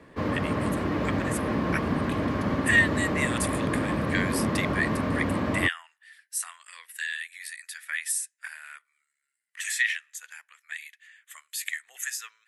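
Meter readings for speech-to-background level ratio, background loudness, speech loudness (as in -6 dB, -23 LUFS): -2.5 dB, -28.0 LUFS, -30.5 LUFS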